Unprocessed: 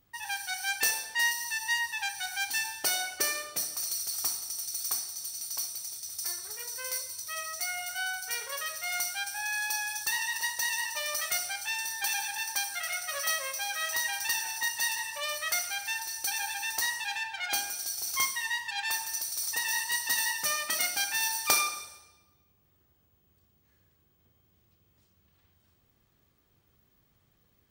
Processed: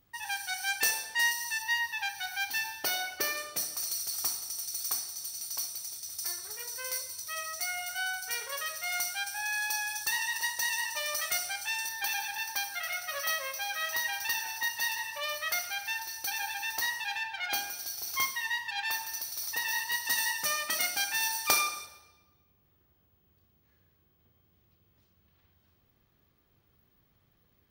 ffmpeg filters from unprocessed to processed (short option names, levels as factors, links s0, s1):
-af "asetnsamples=n=441:p=0,asendcmd='1.62 equalizer g -11.5;3.37 equalizer g -2.5;11.89 equalizer g -10.5;20.05 equalizer g -4;21.86 equalizer g -11',equalizer=f=8000:t=o:w=0.71:g=-2"